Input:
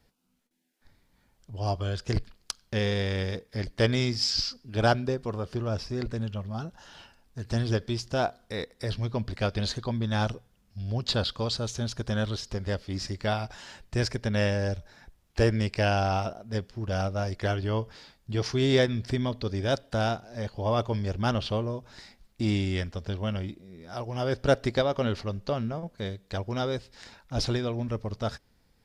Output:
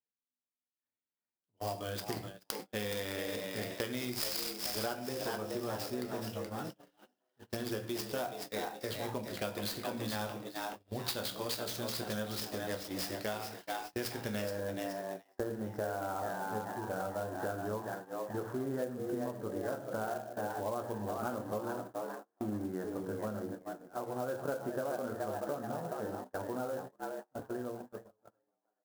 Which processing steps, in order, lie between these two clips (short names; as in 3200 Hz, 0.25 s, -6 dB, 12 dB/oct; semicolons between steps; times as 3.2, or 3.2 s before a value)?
ending faded out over 2.79 s; elliptic low-pass 6700 Hz, from 14.41 s 1600 Hz; dynamic EQ 5000 Hz, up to +5 dB, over -52 dBFS, Q 3.4; HPF 230 Hz 12 dB/oct; frequency-shifting echo 0.425 s, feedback 39%, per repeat +86 Hz, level -7 dB; shoebox room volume 51 m³, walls mixed, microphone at 0.36 m; gate -38 dBFS, range -30 dB; compressor 6:1, threshold -31 dBFS, peak gain reduction 14 dB; clock jitter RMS 0.031 ms; gain -2.5 dB